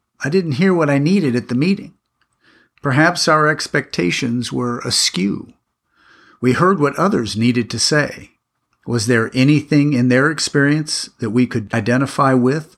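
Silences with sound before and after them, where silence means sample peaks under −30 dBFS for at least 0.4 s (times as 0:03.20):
0:01.86–0:02.84
0:05.44–0:06.43
0:08.23–0:08.88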